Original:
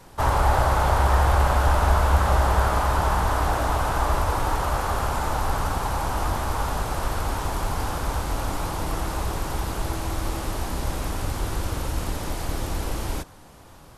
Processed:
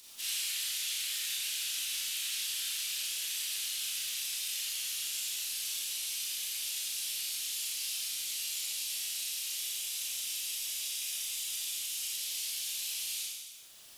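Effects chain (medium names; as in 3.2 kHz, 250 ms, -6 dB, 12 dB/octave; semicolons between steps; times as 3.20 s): 9.53–12.13 s: band-stop 4.3 kHz, Q 14; reverb removal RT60 1.9 s; steep high-pass 2.7 kHz 36 dB/octave; upward compressor, threshold -56 dBFS; bit crusher 10-bit; reverberation RT60 1.4 s, pre-delay 28 ms, DRR -7 dB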